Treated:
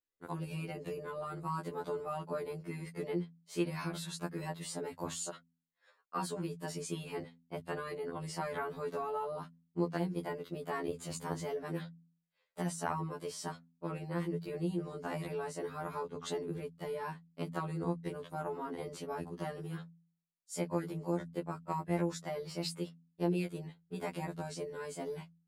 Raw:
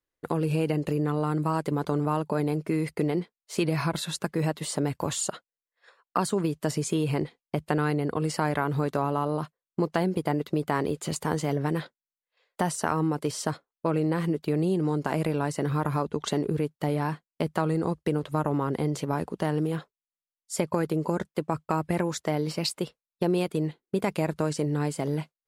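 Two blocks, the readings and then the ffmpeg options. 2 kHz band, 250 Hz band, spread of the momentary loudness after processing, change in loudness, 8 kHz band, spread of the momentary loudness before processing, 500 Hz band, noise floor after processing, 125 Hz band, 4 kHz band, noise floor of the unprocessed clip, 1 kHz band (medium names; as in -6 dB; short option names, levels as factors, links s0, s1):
-10.0 dB, -12.0 dB, 7 LU, -11.0 dB, -10.0 dB, 5 LU, -9.5 dB, -80 dBFS, -12.5 dB, -10.0 dB, under -85 dBFS, -9.5 dB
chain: -af "bandreject=f=83.52:t=h:w=4,bandreject=f=167.04:t=h:w=4,bandreject=f=250.56:t=h:w=4,afftfilt=real='re*2*eq(mod(b,4),0)':imag='im*2*eq(mod(b,4),0)':win_size=2048:overlap=0.75,volume=0.422"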